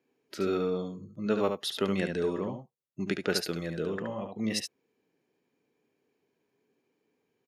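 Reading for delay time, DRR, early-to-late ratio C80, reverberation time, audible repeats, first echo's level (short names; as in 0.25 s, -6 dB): 72 ms, none, none, none, 1, -6.0 dB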